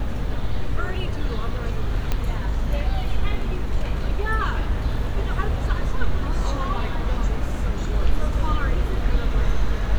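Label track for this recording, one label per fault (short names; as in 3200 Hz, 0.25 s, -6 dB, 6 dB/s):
2.120000	2.120000	pop -10 dBFS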